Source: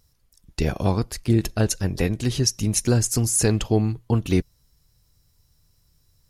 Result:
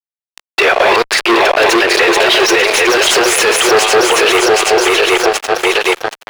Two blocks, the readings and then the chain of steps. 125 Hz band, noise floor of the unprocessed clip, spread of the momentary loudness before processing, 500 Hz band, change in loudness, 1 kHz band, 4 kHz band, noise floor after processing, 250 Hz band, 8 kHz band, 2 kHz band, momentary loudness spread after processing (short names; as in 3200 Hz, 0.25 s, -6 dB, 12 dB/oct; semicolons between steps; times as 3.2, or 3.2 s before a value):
-16.5 dB, -64 dBFS, 5 LU, +17.5 dB, +12.5 dB, +24.0 dB, +20.5 dB, under -85 dBFS, +6.0 dB, +9.5 dB, +27.0 dB, 4 LU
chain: regenerating reverse delay 0.386 s, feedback 65%, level -4 dB; FFT band-pass 340–11000 Hz; bell 3100 Hz +7.5 dB 2 oct; fuzz box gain 34 dB, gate -41 dBFS; three-band isolator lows -14 dB, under 460 Hz, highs -18 dB, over 3300 Hz; maximiser +20 dB; gain -1 dB